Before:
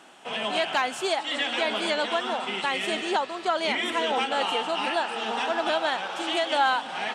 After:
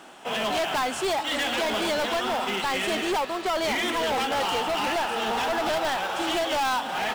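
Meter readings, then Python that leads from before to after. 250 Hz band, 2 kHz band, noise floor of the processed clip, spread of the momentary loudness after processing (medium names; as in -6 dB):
+2.5 dB, -0.5 dB, -34 dBFS, 2 LU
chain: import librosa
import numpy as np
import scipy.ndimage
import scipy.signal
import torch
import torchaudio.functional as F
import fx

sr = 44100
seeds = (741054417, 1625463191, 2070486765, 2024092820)

p1 = fx.sample_hold(x, sr, seeds[0], rate_hz=4300.0, jitter_pct=0)
p2 = x + (p1 * librosa.db_to_amplitude(-10.0))
p3 = np.clip(10.0 ** (26.0 / 20.0) * p2, -1.0, 1.0) / 10.0 ** (26.0 / 20.0)
y = p3 * librosa.db_to_amplitude(3.0)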